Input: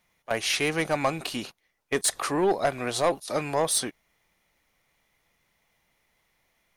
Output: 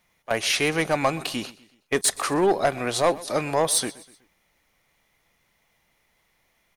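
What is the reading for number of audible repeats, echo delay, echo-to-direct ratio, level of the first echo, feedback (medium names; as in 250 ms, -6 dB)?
3, 124 ms, -19.0 dB, -20.0 dB, 45%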